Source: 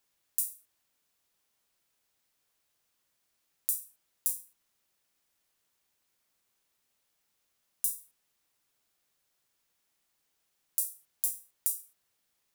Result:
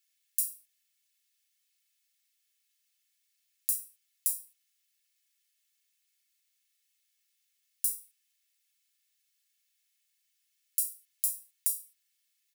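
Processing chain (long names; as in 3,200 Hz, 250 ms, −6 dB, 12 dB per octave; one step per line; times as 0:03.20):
inverse Chebyshev high-pass filter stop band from 740 Hz, stop band 50 dB
comb filter 2.3 ms, depth 77%
level −1 dB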